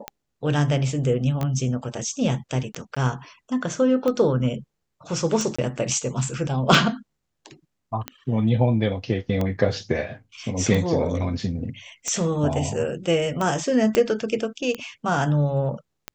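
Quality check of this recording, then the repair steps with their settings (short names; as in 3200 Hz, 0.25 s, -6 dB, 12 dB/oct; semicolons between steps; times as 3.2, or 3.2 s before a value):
tick 45 rpm -13 dBFS
1.43 pop -16 dBFS
2.95–2.96 gap 15 ms
5.56–5.58 gap 25 ms
13.95 pop -7 dBFS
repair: de-click; interpolate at 2.95, 15 ms; interpolate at 5.56, 25 ms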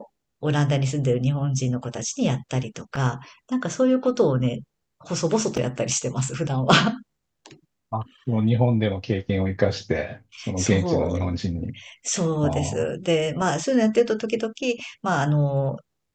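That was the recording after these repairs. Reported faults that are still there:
1.43 pop
13.95 pop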